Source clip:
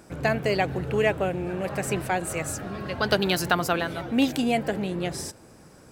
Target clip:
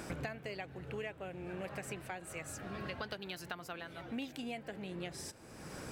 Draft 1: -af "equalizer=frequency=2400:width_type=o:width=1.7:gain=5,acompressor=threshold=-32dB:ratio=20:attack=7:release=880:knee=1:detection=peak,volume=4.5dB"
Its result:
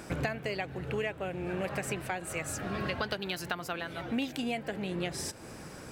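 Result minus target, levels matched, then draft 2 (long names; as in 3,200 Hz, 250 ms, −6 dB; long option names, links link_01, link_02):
downward compressor: peak gain reduction −8.5 dB
-af "equalizer=frequency=2400:width_type=o:width=1.7:gain=5,acompressor=threshold=-41dB:ratio=20:attack=7:release=880:knee=1:detection=peak,volume=4.5dB"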